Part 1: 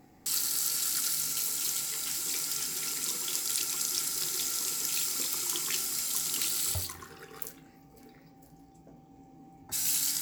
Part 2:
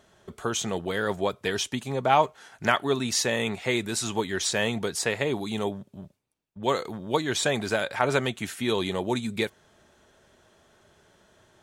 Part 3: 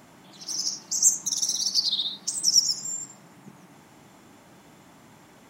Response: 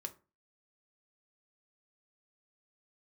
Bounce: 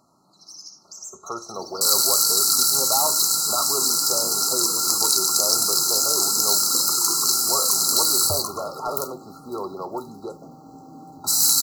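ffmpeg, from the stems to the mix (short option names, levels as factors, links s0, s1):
-filter_complex "[0:a]highpass=120,adelay=1550,volume=1.41[s0];[1:a]acrossover=split=370 2100:gain=0.2 1 0.0891[s1][s2][s3];[s1][s2][s3]amix=inputs=3:normalize=0,volume=14.1,asoftclip=hard,volume=0.0708,adelay=850,volume=0.473,asplit=2[s4][s5];[s5]volume=0.631[s6];[2:a]asoftclip=type=tanh:threshold=0.266,volume=0.133[s7];[s4][s7]amix=inputs=2:normalize=0,aeval=exprs='0.0631*(cos(1*acos(clip(val(0)/0.0631,-1,1)))-cos(1*PI/2))+0.00126*(cos(7*acos(clip(val(0)/0.0631,-1,1)))-cos(7*PI/2))':c=same,acompressor=threshold=0.00282:ratio=2,volume=1[s8];[3:a]atrim=start_sample=2205[s9];[s6][s9]afir=irnorm=-1:irlink=0[s10];[s0][s8][s10]amix=inputs=3:normalize=0,afftfilt=real='re*(1-between(b*sr/4096,1400,3900))':imag='im*(1-between(b*sr/4096,1400,3900))':win_size=4096:overlap=0.75,equalizer=f=2200:w=0.96:g=15,acontrast=83"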